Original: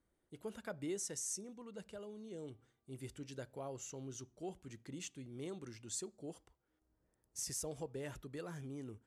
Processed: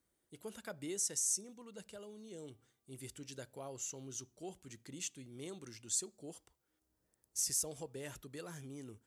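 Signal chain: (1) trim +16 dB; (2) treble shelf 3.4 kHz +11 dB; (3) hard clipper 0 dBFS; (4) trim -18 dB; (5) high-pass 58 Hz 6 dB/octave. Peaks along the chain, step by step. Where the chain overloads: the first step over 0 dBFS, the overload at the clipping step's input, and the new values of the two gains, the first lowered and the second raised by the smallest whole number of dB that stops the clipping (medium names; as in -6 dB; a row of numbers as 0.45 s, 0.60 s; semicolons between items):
-14.0 dBFS, -4.5 dBFS, -4.5 dBFS, -22.5 dBFS, -22.5 dBFS; nothing clips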